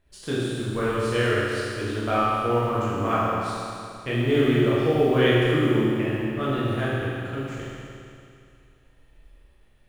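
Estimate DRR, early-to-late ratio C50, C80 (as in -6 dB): -9.0 dB, -3.5 dB, -2.0 dB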